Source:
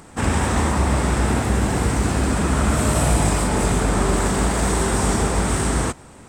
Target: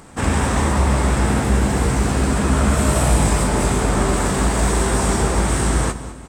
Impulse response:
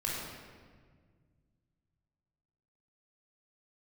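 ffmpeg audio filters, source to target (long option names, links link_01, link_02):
-filter_complex "[0:a]asplit=2[link_01][link_02];[link_02]adelay=15,volume=-10.5dB[link_03];[link_01][link_03]amix=inputs=2:normalize=0,aecho=1:1:199|398|597:0.178|0.0622|0.0218,asplit=2[link_04][link_05];[1:a]atrim=start_sample=2205[link_06];[link_05][link_06]afir=irnorm=-1:irlink=0,volume=-19.5dB[link_07];[link_04][link_07]amix=inputs=2:normalize=0"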